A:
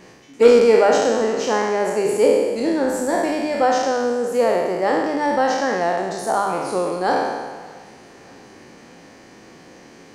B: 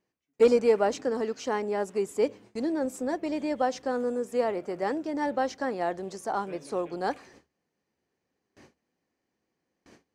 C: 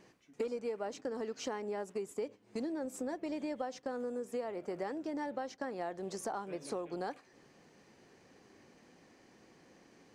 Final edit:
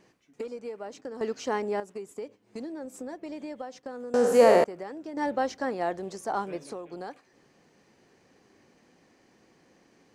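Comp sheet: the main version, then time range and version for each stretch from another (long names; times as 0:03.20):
C
0:01.21–0:01.80: punch in from B
0:04.14–0:04.64: punch in from A
0:05.17–0:06.64: punch in from B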